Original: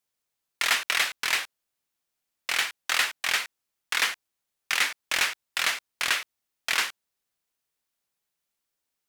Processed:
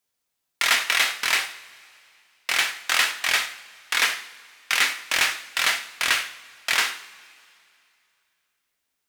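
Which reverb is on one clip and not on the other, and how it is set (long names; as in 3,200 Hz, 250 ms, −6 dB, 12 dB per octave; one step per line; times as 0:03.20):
coupled-rooms reverb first 0.57 s, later 2.7 s, from −18 dB, DRR 6 dB
level +3 dB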